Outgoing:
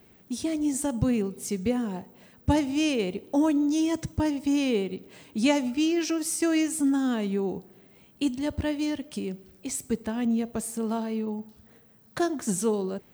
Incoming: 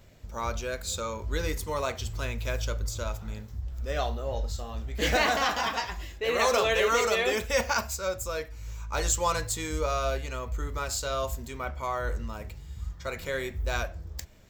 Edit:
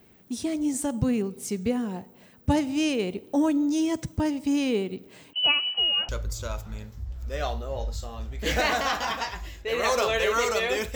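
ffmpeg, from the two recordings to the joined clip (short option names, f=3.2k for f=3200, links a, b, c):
-filter_complex "[0:a]asettb=1/sr,asplit=3[a][b][c];[a]atrim=end=5.334[d];[b]atrim=start=5.33:end=6.09,asetpts=PTS-STARTPTS,afade=t=in:d=0.004:c=qsin,afade=t=out:st=0.756:d=0.004:c=qsin,lowpass=f=2.7k:t=q:w=0.5098,lowpass=f=2.7k:t=q:w=0.6013,lowpass=f=2.7k:t=q:w=0.9,lowpass=f=2.7k:t=q:w=2.563,afreqshift=-3200[e];[c]atrim=start=6.086[f];[d][e]acrossfade=d=0.004:c1=hsin:c2=qsin[g];[g][f]acrossfade=d=0.004:c1=qsin:c2=hsin,apad=whole_dur=10.95,atrim=end=10.95,atrim=end=6.092[h];[1:a]atrim=start=2.648:end=7.51[i];[h][i]acrossfade=d=0.004:c1=hsin:c2=hsin"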